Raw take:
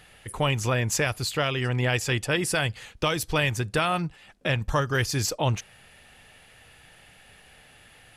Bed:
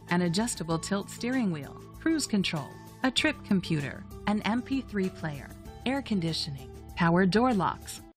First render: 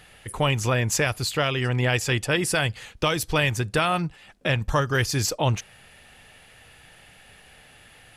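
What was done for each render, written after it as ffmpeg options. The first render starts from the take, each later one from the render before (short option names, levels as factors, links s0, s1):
-af "volume=1.26"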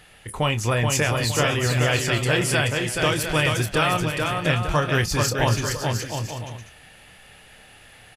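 -filter_complex "[0:a]asplit=2[s0][s1];[s1]adelay=26,volume=0.316[s2];[s0][s2]amix=inputs=2:normalize=0,aecho=1:1:430|709.5|891.2|1009|1086:0.631|0.398|0.251|0.158|0.1"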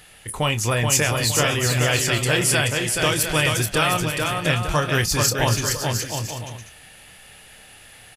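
-af "highshelf=f=4800:g=9"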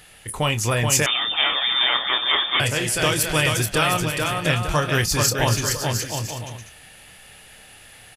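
-filter_complex "[0:a]asettb=1/sr,asplit=3[s0][s1][s2];[s0]atrim=end=1.064[s3];[s1]atrim=start=1.06:end=2.6,asetpts=PTS-STARTPTS,afade=t=in:d=0.004:c=qsin,afade=t=out:st=1.536:d=0.004:c=qsin,lowpass=f=3100:t=q:w=0.5098,lowpass=f=3100:t=q:w=0.6013,lowpass=f=3100:t=q:w=0.9,lowpass=f=3100:t=q:w=2.563,afreqshift=-3700[s4];[s2]atrim=start=2.596[s5];[s3][s4]acrossfade=d=0.004:c1=hsin:c2=qsin[s6];[s6][s5]acrossfade=d=0.004:c1=qsin:c2=hsin"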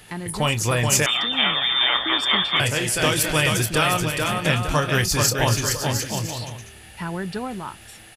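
-filter_complex "[1:a]volume=0.531[s0];[0:a][s0]amix=inputs=2:normalize=0"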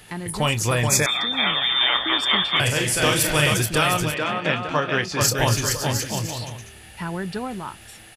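-filter_complex "[0:a]asettb=1/sr,asplit=3[s0][s1][s2];[s0]atrim=end=0.874[s3];[s1]atrim=start=0.87:end=1.47,asetpts=PTS-STARTPTS,afade=t=in:d=0.004:c=qsin,afade=t=out:st=0.596:d=0.004:c=qsin,asuperstop=centerf=2900:order=12:qfactor=4.5[s4];[s2]atrim=start=1.466[s5];[s3][s4]acrossfade=d=0.004:c1=hsin:c2=qsin[s6];[s6][s5]acrossfade=d=0.004:c1=qsin:c2=hsin,asettb=1/sr,asplit=3[s7][s8][s9];[s7]atrim=end=2.634[s10];[s8]atrim=start=2.63:end=3.54,asetpts=PTS-STARTPTS,afade=t=in:d=0.004:c=qsin,afade=t=out:st=0.906:d=0.004:c=qsin,asplit=2[s11][s12];[s12]adelay=41,volume=0.501[s13];[s11][s13]amix=inputs=2:normalize=0,atrim=end_sample=40131[s14];[s9]atrim=start=3.536[s15];[s10][s14]acrossfade=d=0.004:c1=hsin:c2=qsin[s16];[s16][s15]acrossfade=d=0.004:c1=qsin:c2=hsin,asettb=1/sr,asplit=3[s17][s18][s19];[s17]atrim=end=4.144[s20];[s18]atrim=start=4.14:end=5.21,asetpts=PTS-STARTPTS,afade=t=in:d=0.004:c=qsin,afade=t=out:st=1.066:d=0.004:c=qsin,highpass=200,lowpass=3300[s21];[s19]atrim=start=5.206[s22];[s20][s21]acrossfade=d=0.004:c1=hsin:c2=qsin[s23];[s23][s22]acrossfade=d=0.004:c1=qsin:c2=hsin"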